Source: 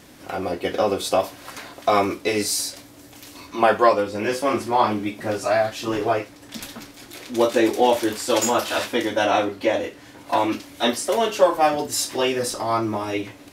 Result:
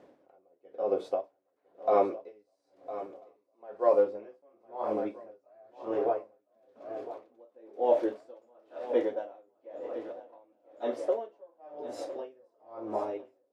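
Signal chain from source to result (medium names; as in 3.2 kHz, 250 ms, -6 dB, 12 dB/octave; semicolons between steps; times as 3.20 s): band-pass filter 530 Hz, Q 2.2; on a send: shuffle delay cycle 1342 ms, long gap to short 3:1, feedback 54%, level -14 dB; on the sum: logarithmic tremolo 1 Hz, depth 37 dB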